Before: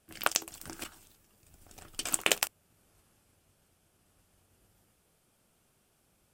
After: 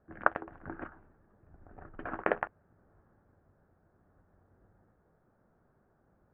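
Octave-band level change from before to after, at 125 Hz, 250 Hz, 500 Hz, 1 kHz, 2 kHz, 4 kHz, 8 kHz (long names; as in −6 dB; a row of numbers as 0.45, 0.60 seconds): +3.5 dB, +4.0 dB, +4.5 dB, +4.0 dB, −0.5 dB, −29.0 dB, below −40 dB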